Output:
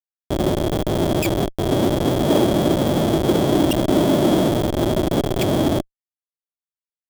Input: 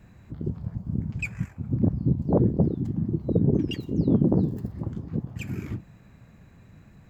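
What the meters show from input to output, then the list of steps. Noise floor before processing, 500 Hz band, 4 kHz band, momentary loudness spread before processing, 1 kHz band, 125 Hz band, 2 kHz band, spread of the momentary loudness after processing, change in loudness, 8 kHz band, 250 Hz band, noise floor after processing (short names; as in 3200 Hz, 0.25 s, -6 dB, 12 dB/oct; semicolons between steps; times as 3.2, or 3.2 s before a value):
-53 dBFS, +13.0 dB, +19.5 dB, 12 LU, +19.5 dB, +2.0 dB, +9.5 dB, 5 LU, +7.5 dB, n/a, +7.0 dB, under -85 dBFS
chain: Schmitt trigger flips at -38 dBFS; high shelf 5100 Hz +8.5 dB; small resonant body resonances 350/590/3300 Hz, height 17 dB, ringing for 20 ms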